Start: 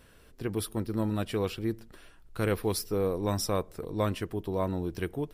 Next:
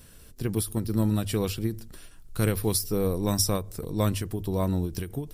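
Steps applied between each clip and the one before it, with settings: tone controls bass +9 dB, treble +13 dB; notches 50/100 Hz; ending taper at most 150 dB/s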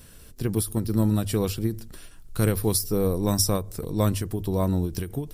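dynamic EQ 2600 Hz, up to -4 dB, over -46 dBFS, Q 1; gain +2.5 dB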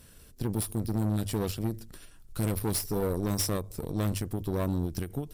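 tube stage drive 24 dB, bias 0.8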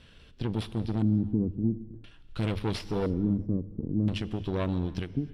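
LFO low-pass square 0.49 Hz 260–3200 Hz; on a send at -16 dB: reverb, pre-delay 3 ms

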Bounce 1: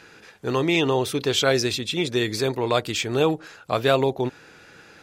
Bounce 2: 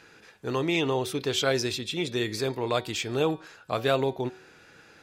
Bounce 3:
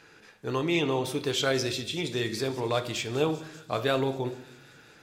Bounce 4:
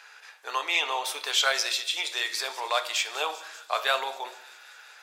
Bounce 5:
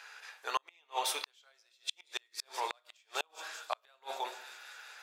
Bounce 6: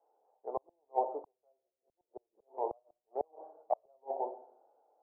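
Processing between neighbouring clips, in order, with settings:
de-hum 187.5 Hz, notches 28; gain -5 dB
thin delay 0.195 s, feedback 79%, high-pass 5400 Hz, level -13.5 dB; shoebox room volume 200 m³, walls mixed, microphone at 0.36 m; gain -1.5 dB
HPF 740 Hz 24 dB/oct; gain +6 dB
flipped gate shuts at -17 dBFS, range -39 dB; gain -1.5 dB
steep low-pass 780 Hz 48 dB/oct; three-band expander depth 40%; gain +6.5 dB

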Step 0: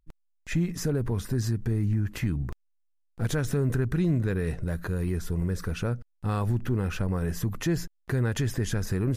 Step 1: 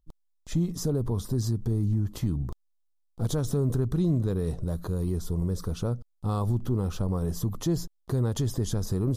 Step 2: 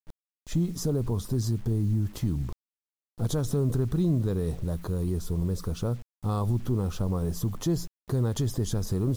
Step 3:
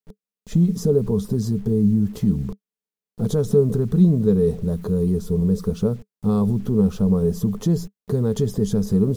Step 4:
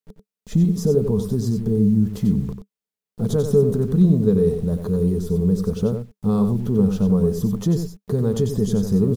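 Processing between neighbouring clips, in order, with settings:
band shelf 2000 Hz -15 dB 1.1 oct
bit-crush 9-bit
small resonant body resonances 200/430 Hz, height 17 dB, ringing for 80 ms
echo 92 ms -7.5 dB

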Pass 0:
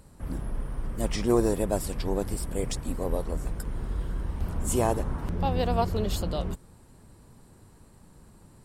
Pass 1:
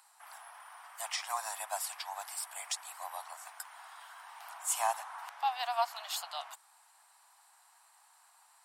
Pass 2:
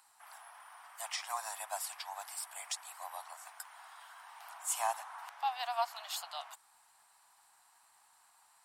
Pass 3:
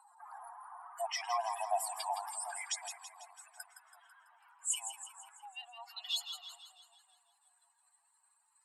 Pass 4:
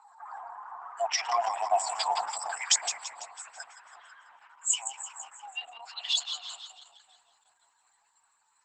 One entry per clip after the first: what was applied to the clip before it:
steep high-pass 720 Hz 72 dB/oct
crackle 280/s -63 dBFS; gain -2.5 dB
spectral contrast raised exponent 2.8; high-pass sweep 560 Hz -> 2500 Hz, 1.62–3.11; split-band echo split 870 Hz, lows 0.371 s, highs 0.165 s, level -9 dB; gain +1 dB
gain +8 dB; Opus 10 kbps 48000 Hz

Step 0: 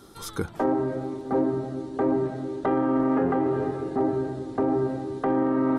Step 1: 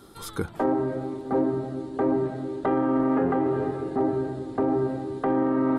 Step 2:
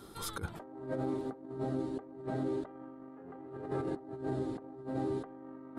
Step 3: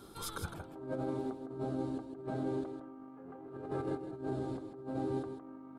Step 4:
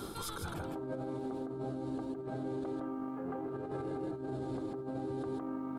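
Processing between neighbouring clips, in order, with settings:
bell 5900 Hz -6.5 dB 0.33 oct
negative-ratio compressor -31 dBFS, ratio -0.5; gain -7.5 dB
notch 1900 Hz, Q 7.9; on a send: echo 0.159 s -8 dB; on the sum: gain -1.5 dB
reverse; compressor 10:1, threshold -44 dBFS, peak gain reduction 13 dB; reverse; limiter -42 dBFS, peak gain reduction 7 dB; gain +11.5 dB

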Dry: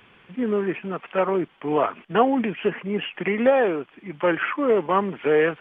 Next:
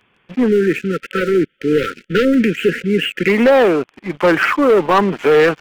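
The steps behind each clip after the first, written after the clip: sample leveller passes 3; spectral delete 0.48–3.29, 550–1300 Hz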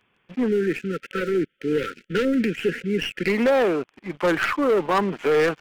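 tracing distortion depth 0.062 ms; gain -8 dB

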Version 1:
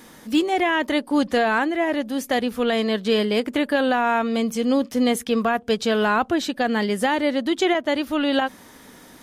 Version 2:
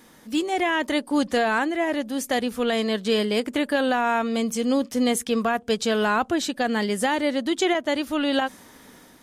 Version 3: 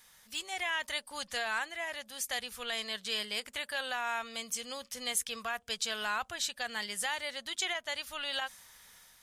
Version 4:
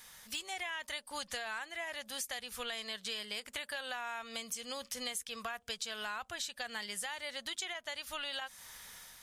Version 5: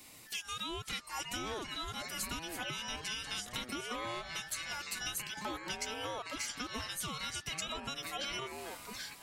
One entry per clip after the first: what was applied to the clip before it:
dynamic EQ 8000 Hz, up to +7 dB, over -49 dBFS, Q 1; AGC gain up to 4 dB; gain -6 dB
passive tone stack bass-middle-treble 10-0-10; gain -2.5 dB
compressor 6:1, threshold -43 dBFS, peak gain reduction 15.5 dB; gain +5.5 dB
band inversion scrambler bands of 2000 Hz; echoes that change speed 0.446 s, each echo -5 st, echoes 3, each echo -6 dB

